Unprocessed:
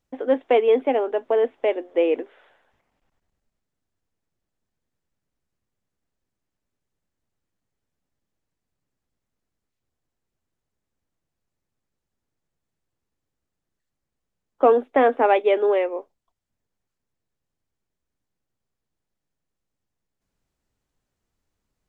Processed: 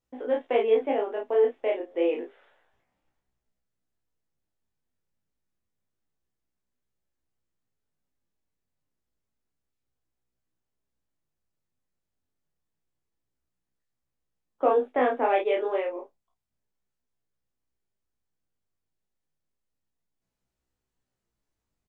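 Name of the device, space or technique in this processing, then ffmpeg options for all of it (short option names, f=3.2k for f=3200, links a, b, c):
double-tracked vocal: -filter_complex "[0:a]asplit=2[a][b];[b]adelay=32,volume=-3dB[c];[a][c]amix=inputs=2:normalize=0,flanger=delay=16:depth=4.8:speed=0.29,volume=-4dB"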